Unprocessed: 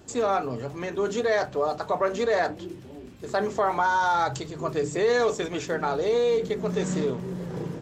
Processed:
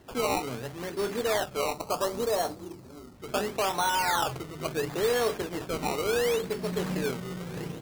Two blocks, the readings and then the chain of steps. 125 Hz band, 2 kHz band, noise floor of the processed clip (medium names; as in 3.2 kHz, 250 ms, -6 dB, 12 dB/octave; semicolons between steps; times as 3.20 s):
-3.5 dB, -3.5 dB, -47 dBFS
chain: modulation noise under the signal 14 dB; decimation with a swept rate 18×, swing 100% 0.72 Hz; time-frequency box 1.74–3.15 s, 1.4–3.8 kHz -7 dB; trim -4 dB